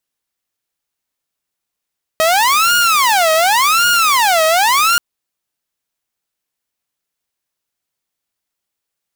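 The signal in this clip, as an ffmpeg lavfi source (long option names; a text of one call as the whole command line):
ffmpeg -f lavfi -i "aevalsrc='0.422*(2*mod((1031.5*t-398.5/(2*PI*0.89)*sin(2*PI*0.89*t)),1)-1)':duration=2.78:sample_rate=44100" out.wav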